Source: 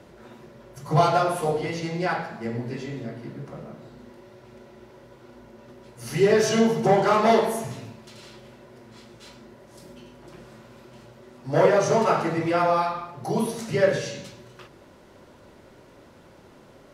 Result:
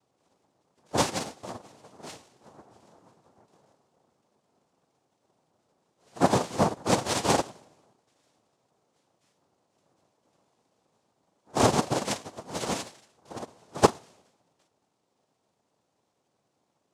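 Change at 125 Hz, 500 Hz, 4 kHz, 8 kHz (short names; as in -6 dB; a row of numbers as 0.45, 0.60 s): -6.0, -9.0, 0.0, +2.5 dB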